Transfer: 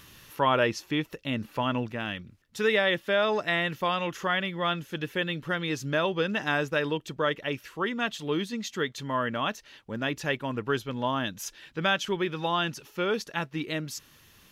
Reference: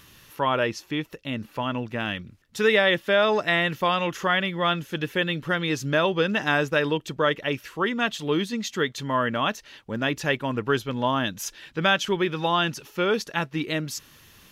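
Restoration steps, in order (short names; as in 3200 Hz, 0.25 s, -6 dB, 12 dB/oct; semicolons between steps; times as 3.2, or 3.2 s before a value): gain 0 dB, from 1.92 s +4.5 dB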